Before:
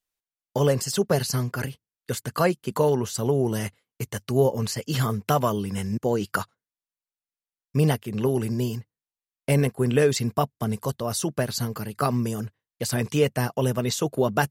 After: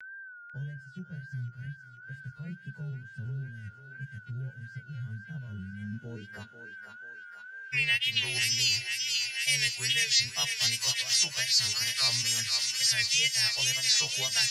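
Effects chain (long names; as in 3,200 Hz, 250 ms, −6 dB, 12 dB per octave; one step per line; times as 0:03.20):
every partial snapped to a pitch grid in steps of 2 semitones
guitar amp tone stack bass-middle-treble 10-0-10
reversed playback
downward compressor, threshold −34 dBFS, peak gain reduction 16.5 dB
reversed playback
low-pass filter sweep 170 Hz → 5,200 Hz, 0:05.76–0:08.44
steady tone 1,500 Hz −61 dBFS
tape wow and flutter 98 cents
high shelf with overshoot 1,600 Hz +6.5 dB, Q 3
feedback echo with a high-pass in the loop 491 ms, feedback 80%, high-pass 1,000 Hz, level −8 dB
on a send at −22.5 dB: convolution reverb RT60 0.70 s, pre-delay 3 ms
on the sum: multiband upward and downward compressor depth 70%
level +2 dB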